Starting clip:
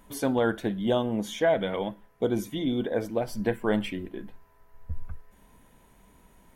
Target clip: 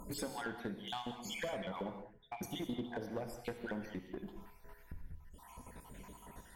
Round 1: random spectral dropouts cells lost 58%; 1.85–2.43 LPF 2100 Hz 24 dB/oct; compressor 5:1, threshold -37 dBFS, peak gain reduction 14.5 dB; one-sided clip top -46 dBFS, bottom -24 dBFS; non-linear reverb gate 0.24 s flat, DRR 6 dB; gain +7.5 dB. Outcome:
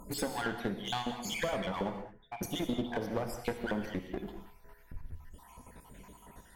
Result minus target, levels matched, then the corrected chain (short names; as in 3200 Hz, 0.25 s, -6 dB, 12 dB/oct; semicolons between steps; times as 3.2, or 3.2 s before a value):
compressor: peak gain reduction -8.5 dB
random spectral dropouts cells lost 58%; 1.85–2.43 LPF 2100 Hz 24 dB/oct; compressor 5:1, threshold -47.5 dBFS, peak gain reduction 22.5 dB; one-sided clip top -46 dBFS, bottom -24 dBFS; non-linear reverb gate 0.24 s flat, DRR 6 dB; gain +7.5 dB